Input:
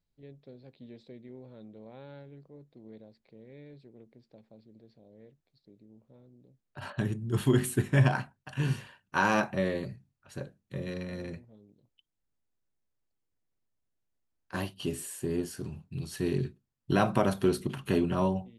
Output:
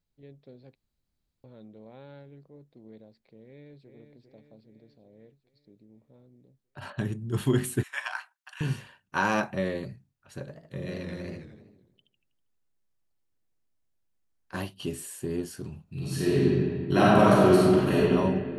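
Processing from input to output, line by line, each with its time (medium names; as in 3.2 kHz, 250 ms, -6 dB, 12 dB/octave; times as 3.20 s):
0.75–1.44 s: room tone
3.45–3.89 s: echo throw 400 ms, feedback 60%, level -7 dB
7.83–8.61 s: high-pass 1 kHz 24 dB/octave
10.39–14.62 s: modulated delay 80 ms, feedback 51%, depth 180 cents, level -5 dB
15.83–17.98 s: reverb throw, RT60 2.1 s, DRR -7.5 dB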